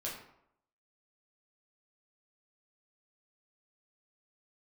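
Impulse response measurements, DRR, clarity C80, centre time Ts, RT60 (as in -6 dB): -5.5 dB, 8.0 dB, 39 ms, 0.75 s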